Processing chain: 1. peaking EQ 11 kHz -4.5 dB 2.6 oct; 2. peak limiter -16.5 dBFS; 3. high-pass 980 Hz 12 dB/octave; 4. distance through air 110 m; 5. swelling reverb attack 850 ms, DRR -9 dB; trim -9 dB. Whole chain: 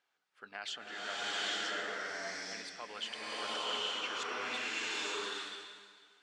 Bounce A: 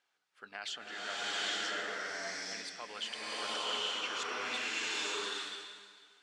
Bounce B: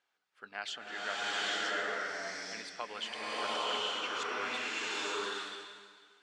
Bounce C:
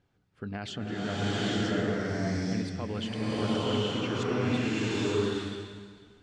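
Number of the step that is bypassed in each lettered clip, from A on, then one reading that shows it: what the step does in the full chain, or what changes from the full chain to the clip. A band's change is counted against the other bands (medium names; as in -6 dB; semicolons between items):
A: 1, loudness change +1.0 LU; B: 2, 8 kHz band -2.0 dB; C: 3, 250 Hz band +22.5 dB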